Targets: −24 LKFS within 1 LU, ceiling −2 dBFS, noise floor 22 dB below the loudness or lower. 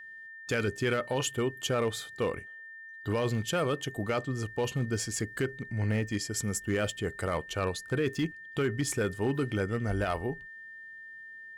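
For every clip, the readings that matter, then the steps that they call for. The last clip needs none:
share of clipped samples 0.8%; peaks flattened at −22.0 dBFS; interfering tone 1,800 Hz; level of the tone −44 dBFS; integrated loudness −31.5 LKFS; sample peak −22.0 dBFS; target loudness −24.0 LKFS
→ clipped peaks rebuilt −22 dBFS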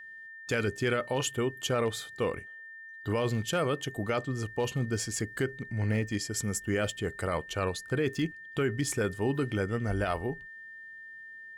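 share of clipped samples 0.0%; interfering tone 1,800 Hz; level of the tone −44 dBFS
→ notch filter 1,800 Hz, Q 30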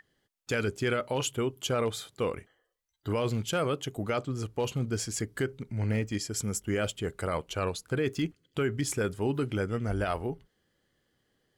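interfering tone none found; integrated loudness −31.5 LKFS; sample peak −17.5 dBFS; target loudness −24.0 LKFS
→ level +7.5 dB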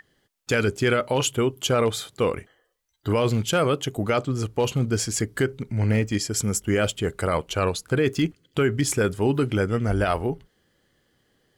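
integrated loudness −24.0 LKFS; sample peak −10.0 dBFS; background noise floor −70 dBFS

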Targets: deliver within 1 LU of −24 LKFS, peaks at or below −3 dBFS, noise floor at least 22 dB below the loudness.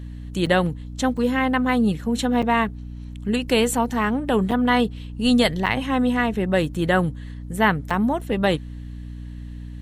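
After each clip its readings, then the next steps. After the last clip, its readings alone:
number of dropouts 6; longest dropout 5.7 ms; mains hum 60 Hz; hum harmonics up to 300 Hz; level of the hum −32 dBFS; integrated loudness −21.5 LKFS; sample peak −5.0 dBFS; target loudness −24.0 LKFS
→ repair the gap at 0:00.46/0:01.17/0:02.42/0:04.51/0:05.66/0:07.90, 5.7 ms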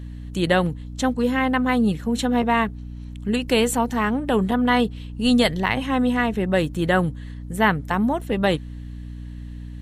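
number of dropouts 0; mains hum 60 Hz; hum harmonics up to 300 Hz; level of the hum −32 dBFS
→ mains-hum notches 60/120/180/240/300 Hz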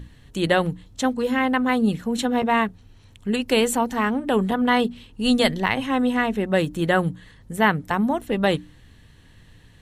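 mains hum none found; integrated loudness −22.0 LKFS; sample peak −5.0 dBFS; target loudness −24.0 LKFS
→ level −2 dB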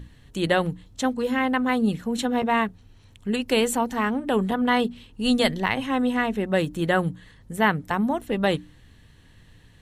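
integrated loudness −24.0 LKFS; sample peak −7.0 dBFS; background noise floor −53 dBFS

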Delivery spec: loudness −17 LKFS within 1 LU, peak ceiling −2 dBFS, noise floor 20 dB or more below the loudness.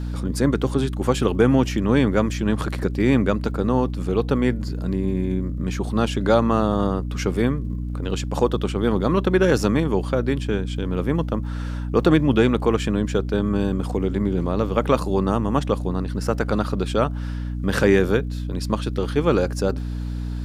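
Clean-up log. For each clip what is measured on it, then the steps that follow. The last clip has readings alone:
crackle rate 48 per second; mains hum 60 Hz; hum harmonics up to 300 Hz; level of the hum −25 dBFS; integrated loudness −22.0 LKFS; sample peak −4.0 dBFS; target loudness −17.0 LKFS
→ click removal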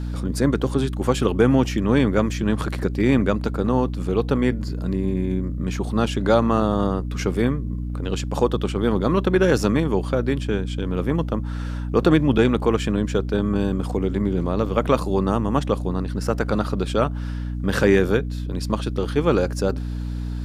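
crackle rate 0.098 per second; mains hum 60 Hz; hum harmonics up to 300 Hz; level of the hum −25 dBFS
→ mains-hum notches 60/120/180/240/300 Hz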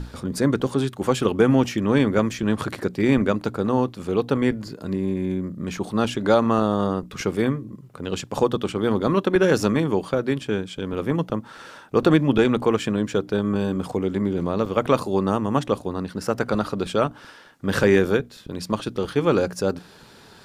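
mains hum none found; integrated loudness −23.0 LKFS; sample peak −5.0 dBFS; target loudness −17.0 LKFS
→ level +6 dB
brickwall limiter −2 dBFS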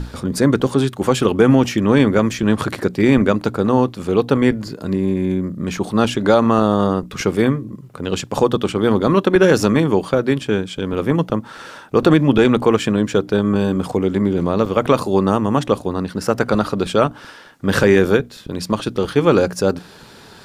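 integrated loudness −17.5 LKFS; sample peak −2.0 dBFS; background noise floor −41 dBFS

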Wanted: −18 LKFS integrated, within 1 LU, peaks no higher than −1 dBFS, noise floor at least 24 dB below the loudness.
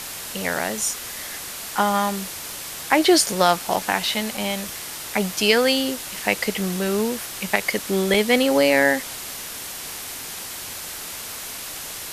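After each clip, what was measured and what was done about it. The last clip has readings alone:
number of dropouts 3; longest dropout 3.9 ms; background noise floor −34 dBFS; target noise floor −47 dBFS; integrated loudness −22.5 LKFS; sample peak −2.5 dBFS; target loudness −18.0 LKFS
→ repair the gap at 0:03.76/0:04.37/0:08.14, 3.9 ms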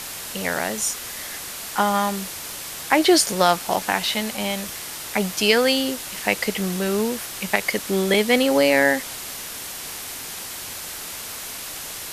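number of dropouts 0; background noise floor −34 dBFS; target noise floor −47 dBFS
→ broadband denoise 13 dB, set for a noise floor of −34 dBFS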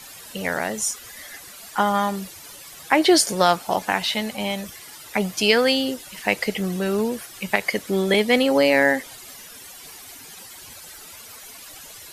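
background noise floor −42 dBFS; target noise floor −46 dBFS
→ broadband denoise 6 dB, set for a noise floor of −42 dBFS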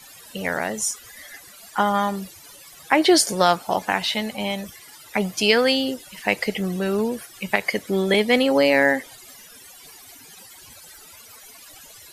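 background noise floor −46 dBFS; integrated loudness −21.5 LKFS; sample peak −2.5 dBFS; target loudness −18.0 LKFS
→ level +3.5 dB
brickwall limiter −1 dBFS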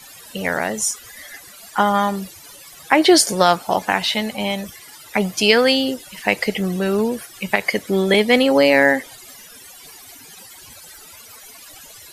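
integrated loudness −18.0 LKFS; sample peak −1.0 dBFS; background noise floor −42 dBFS

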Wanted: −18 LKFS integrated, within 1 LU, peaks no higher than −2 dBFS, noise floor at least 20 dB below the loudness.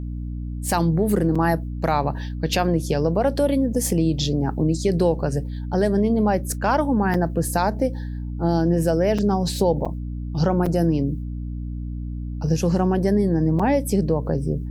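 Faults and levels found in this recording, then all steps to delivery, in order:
number of dropouts 6; longest dropout 5.1 ms; mains hum 60 Hz; hum harmonics up to 300 Hz; level of the hum −27 dBFS; integrated loudness −22.0 LKFS; sample peak −7.0 dBFS; target loudness −18.0 LKFS
→ repair the gap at 0:01.35/0:07.14/0:09.18/0:09.85/0:10.66/0:13.59, 5.1 ms
hum removal 60 Hz, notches 5
level +4 dB

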